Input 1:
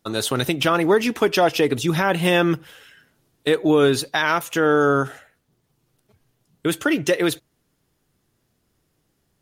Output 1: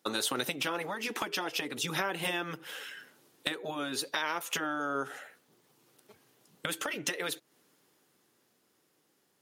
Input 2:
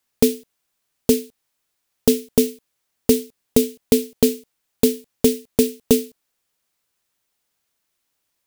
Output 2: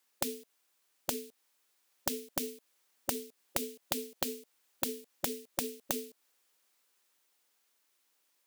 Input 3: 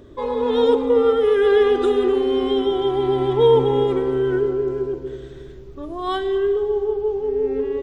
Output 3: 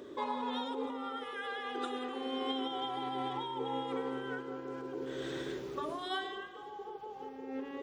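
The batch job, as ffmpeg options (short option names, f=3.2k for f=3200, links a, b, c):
-af "highpass=300,dynaudnorm=f=110:g=31:m=14.5dB,bandreject=f=660:w=12,acompressor=threshold=-26dB:ratio=20,afftfilt=real='re*lt(hypot(re,im),0.2)':imag='im*lt(hypot(re,im),0.2)':win_size=1024:overlap=0.75"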